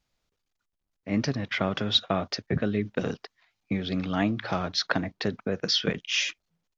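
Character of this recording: noise floor -82 dBFS; spectral tilt -4.5 dB/octave

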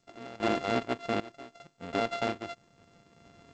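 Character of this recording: a buzz of ramps at a fixed pitch in blocks of 64 samples; random-step tremolo 2.5 Hz, depth 90%; G.722

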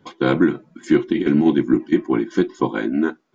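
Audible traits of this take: noise floor -60 dBFS; spectral tilt -6.0 dB/octave

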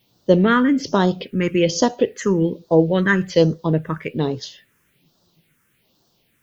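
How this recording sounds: a quantiser's noise floor 12-bit, dither triangular; phasing stages 4, 1.2 Hz, lowest notch 680–2200 Hz

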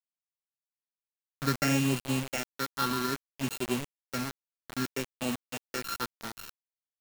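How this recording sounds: a buzz of ramps at a fixed pitch in blocks of 32 samples; phasing stages 6, 0.61 Hz, lowest notch 620–1500 Hz; a quantiser's noise floor 6-bit, dither none

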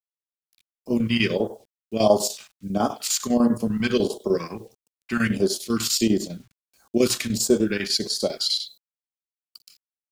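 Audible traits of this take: chopped level 10 Hz, depth 65%, duty 75%; a quantiser's noise floor 10-bit, dither none; phasing stages 2, 1.5 Hz, lowest notch 480–2300 Hz

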